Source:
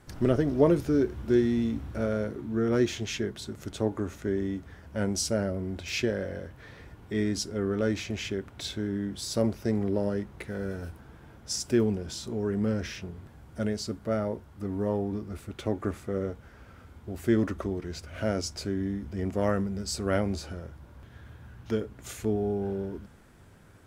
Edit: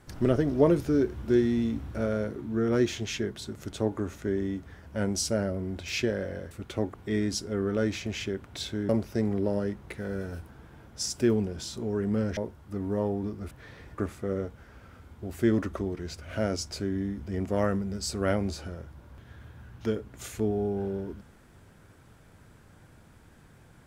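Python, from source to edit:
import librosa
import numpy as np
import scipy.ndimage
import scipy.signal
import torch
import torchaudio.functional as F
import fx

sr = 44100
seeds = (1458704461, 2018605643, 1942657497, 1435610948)

y = fx.edit(x, sr, fx.swap(start_s=6.51, length_s=0.47, other_s=15.4, other_length_s=0.43),
    fx.cut(start_s=8.93, length_s=0.46),
    fx.cut(start_s=12.87, length_s=1.39), tone=tone)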